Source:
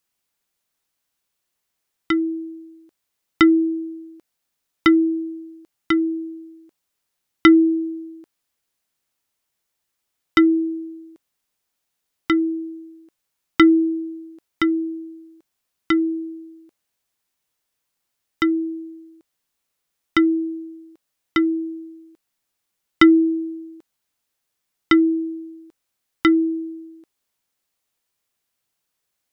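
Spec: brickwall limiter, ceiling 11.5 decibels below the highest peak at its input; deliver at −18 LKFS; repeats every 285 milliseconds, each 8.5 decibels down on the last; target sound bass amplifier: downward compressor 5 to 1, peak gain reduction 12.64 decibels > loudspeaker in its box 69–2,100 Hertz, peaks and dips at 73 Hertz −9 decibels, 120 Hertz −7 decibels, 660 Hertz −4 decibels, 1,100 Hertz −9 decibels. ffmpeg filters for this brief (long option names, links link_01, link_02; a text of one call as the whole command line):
ffmpeg -i in.wav -af "alimiter=limit=-15.5dB:level=0:latency=1,aecho=1:1:285|570|855|1140:0.376|0.143|0.0543|0.0206,acompressor=threshold=-32dB:ratio=5,highpass=frequency=69:width=0.5412,highpass=frequency=69:width=1.3066,equalizer=frequency=73:width_type=q:width=4:gain=-9,equalizer=frequency=120:width_type=q:width=4:gain=-7,equalizer=frequency=660:width_type=q:width=4:gain=-4,equalizer=frequency=1100:width_type=q:width=4:gain=-9,lowpass=frequency=2100:width=0.5412,lowpass=frequency=2100:width=1.3066,volume=19dB" out.wav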